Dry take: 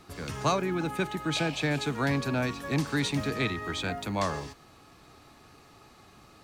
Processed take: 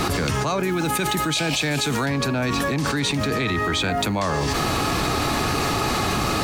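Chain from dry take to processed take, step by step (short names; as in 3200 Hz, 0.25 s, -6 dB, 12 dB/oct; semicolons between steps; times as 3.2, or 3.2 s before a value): 0.63–2.06 high shelf 3700 Hz +11.5 dB; fast leveller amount 100%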